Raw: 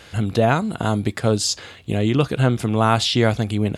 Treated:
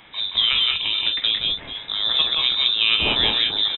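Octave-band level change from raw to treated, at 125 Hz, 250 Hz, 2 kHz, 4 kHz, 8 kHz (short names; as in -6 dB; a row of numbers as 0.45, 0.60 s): -22.0 dB, -18.0 dB, +2.5 dB, +12.0 dB, under -40 dB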